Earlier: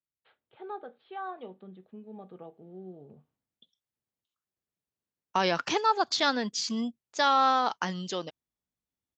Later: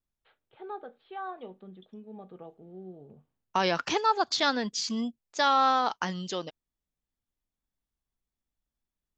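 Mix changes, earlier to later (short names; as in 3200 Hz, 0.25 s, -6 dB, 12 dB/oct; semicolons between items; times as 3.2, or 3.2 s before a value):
second voice: entry -1.80 s; master: remove HPF 82 Hz 12 dB/oct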